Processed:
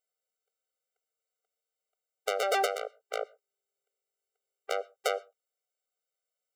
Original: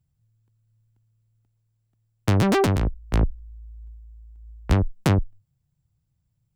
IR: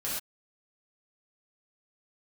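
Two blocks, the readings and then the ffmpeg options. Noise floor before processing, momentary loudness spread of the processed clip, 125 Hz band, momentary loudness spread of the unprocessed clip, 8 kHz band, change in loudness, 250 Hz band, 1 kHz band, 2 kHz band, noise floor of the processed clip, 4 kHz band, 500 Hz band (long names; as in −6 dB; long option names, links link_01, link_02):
−74 dBFS, 11 LU, below −40 dB, 8 LU, −3.0 dB, −9.5 dB, below −25 dB, −3.0 dB, −3.5 dB, below −85 dBFS, −2.5 dB, −5.0 dB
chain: -filter_complex "[0:a]asplit=2[link_01][link_02];[1:a]atrim=start_sample=2205,lowpass=6900[link_03];[link_02][link_03]afir=irnorm=-1:irlink=0,volume=-26dB[link_04];[link_01][link_04]amix=inputs=2:normalize=0,afftfilt=real='re*eq(mod(floor(b*sr/1024/390),2),1)':imag='im*eq(mod(floor(b*sr/1024/390),2),1)':win_size=1024:overlap=0.75"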